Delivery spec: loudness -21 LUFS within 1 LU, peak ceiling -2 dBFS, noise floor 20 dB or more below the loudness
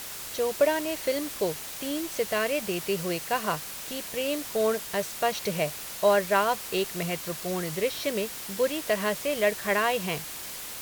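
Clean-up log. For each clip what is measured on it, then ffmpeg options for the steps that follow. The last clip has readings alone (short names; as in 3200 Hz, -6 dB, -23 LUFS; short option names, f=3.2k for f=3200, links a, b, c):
noise floor -39 dBFS; noise floor target -48 dBFS; loudness -28.0 LUFS; peak -9.5 dBFS; loudness target -21.0 LUFS
-> -af "afftdn=nr=9:nf=-39"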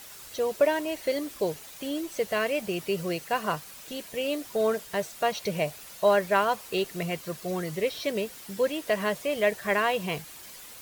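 noise floor -46 dBFS; noise floor target -49 dBFS
-> -af "afftdn=nr=6:nf=-46"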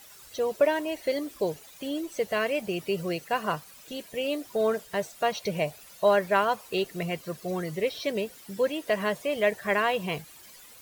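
noise floor -51 dBFS; loudness -28.5 LUFS; peak -10.0 dBFS; loudness target -21.0 LUFS
-> -af "volume=7.5dB"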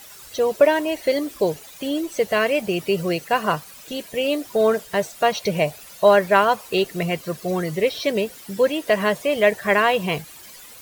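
loudness -21.0 LUFS; peak -2.5 dBFS; noise floor -43 dBFS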